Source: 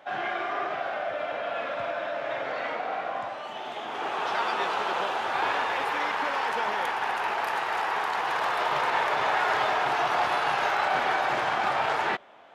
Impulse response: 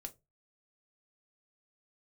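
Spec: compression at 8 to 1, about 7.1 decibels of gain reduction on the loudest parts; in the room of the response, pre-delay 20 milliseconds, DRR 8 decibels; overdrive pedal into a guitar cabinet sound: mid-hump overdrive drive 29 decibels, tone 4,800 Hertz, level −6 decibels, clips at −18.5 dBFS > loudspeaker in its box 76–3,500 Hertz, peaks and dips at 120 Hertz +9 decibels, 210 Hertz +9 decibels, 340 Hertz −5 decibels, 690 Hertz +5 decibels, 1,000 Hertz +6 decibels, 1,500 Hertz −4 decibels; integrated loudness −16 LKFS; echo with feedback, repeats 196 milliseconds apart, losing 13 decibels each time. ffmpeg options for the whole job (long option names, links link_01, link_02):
-filter_complex "[0:a]acompressor=threshold=-29dB:ratio=8,aecho=1:1:196|392|588:0.224|0.0493|0.0108,asplit=2[link_01][link_02];[1:a]atrim=start_sample=2205,adelay=20[link_03];[link_02][link_03]afir=irnorm=-1:irlink=0,volume=-3.5dB[link_04];[link_01][link_04]amix=inputs=2:normalize=0,asplit=2[link_05][link_06];[link_06]highpass=frequency=720:poles=1,volume=29dB,asoftclip=type=tanh:threshold=-18.5dB[link_07];[link_05][link_07]amix=inputs=2:normalize=0,lowpass=frequency=4800:poles=1,volume=-6dB,highpass=76,equalizer=frequency=120:width_type=q:width=4:gain=9,equalizer=frequency=210:width_type=q:width=4:gain=9,equalizer=frequency=340:width_type=q:width=4:gain=-5,equalizer=frequency=690:width_type=q:width=4:gain=5,equalizer=frequency=1000:width_type=q:width=4:gain=6,equalizer=frequency=1500:width_type=q:width=4:gain=-4,lowpass=frequency=3500:width=0.5412,lowpass=frequency=3500:width=1.3066,volume=6dB"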